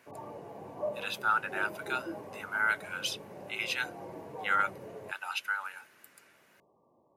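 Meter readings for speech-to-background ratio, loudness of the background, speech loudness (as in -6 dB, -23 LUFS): 10.5 dB, -43.5 LUFS, -33.0 LUFS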